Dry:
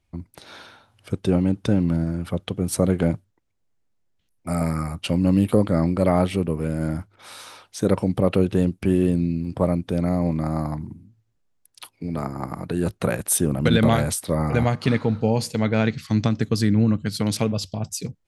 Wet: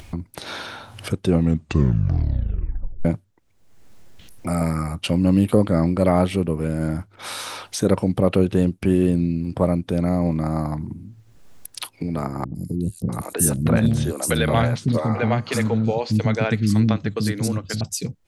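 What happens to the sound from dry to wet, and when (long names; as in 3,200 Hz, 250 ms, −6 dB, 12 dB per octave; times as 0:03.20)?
0:01.26: tape stop 1.79 s
0:12.44–0:17.81: three-band delay without the direct sound lows, highs, mids 110/650 ms, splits 330/4,900 Hz
whole clip: upward compression, threshold −23 dBFS; level +1.5 dB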